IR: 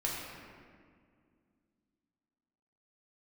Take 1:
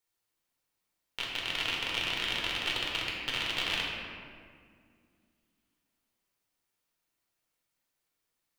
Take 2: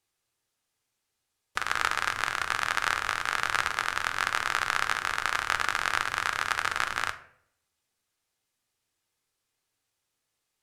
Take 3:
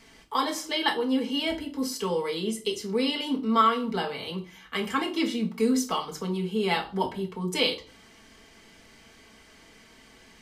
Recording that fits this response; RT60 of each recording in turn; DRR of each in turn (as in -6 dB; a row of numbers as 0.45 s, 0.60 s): 1; 2.1 s, 0.65 s, 0.40 s; -4.0 dB, 8.5 dB, 1.0 dB